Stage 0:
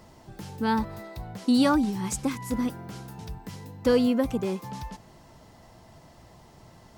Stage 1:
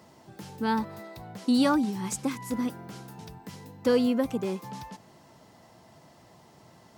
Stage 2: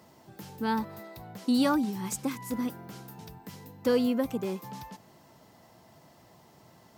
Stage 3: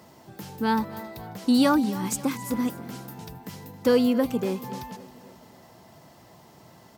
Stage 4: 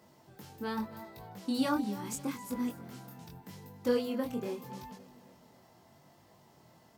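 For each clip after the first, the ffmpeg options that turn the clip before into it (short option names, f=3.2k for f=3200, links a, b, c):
-af "highpass=130,volume=-1.5dB"
-af "equalizer=f=14k:t=o:w=0.24:g=12.5,volume=-2dB"
-af "aecho=1:1:270|540|810|1080|1350:0.126|0.068|0.0367|0.0198|0.0107,volume=5dB"
-af "flanger=delay=20:depth=4.4:speed=0.8,volume=-6.5dB"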